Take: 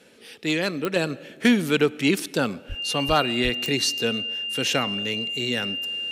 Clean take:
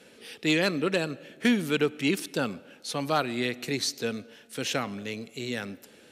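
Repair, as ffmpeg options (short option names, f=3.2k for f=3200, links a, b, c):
-filter_complex "[0:a]adeclick=t=4,bandreject=f=2.8k:w=30,asplit=3[a][b][c];[a]afade=t=out:st=2.68:d=0.02[d];[b]highpass=f=140:w=0.5412,highpass=f=140:w=1.3066,afade=t=in:st=2.68:d=0.02,afade=t=out:st=2.8:d=0.02[e];[c]afade=t=in:st=2.8:d=0.02[f];[d][e][f]amix=inputs=3:normalize=0,asplit=3[g][h][i];[g]afade=t=out:st=3.07:d=0.02[j];[h]highpass=f=140:w=0.5412,highpass=f=140:w=1.3066,afade=t=in:st=3.07:d=0.02,afade=t=out:st=3.19:d=0.02[k];[i]afade=t=in:st=3.19:d=0.02[l];[j][k][l]amix=inputs=3:normalize=0,asplit=3[m][n][o];[m]afade=t=out:st=3.43:d=0.02[p];[n]highpass=f=140:w=0.5412,highpass=f=140:w=1.3066,afade=t=in:st=3.43:d=0.02,afade=t=out:st=3.55:d=0.02[q];[o]afade=t=in:st=3.55:d=0.02[r];[p][q][r]amix=inputs=3:normalize=0,asetnsamples=n=441:p=0,asendcmd='0.96 volume volume -5dB',volume=0dB"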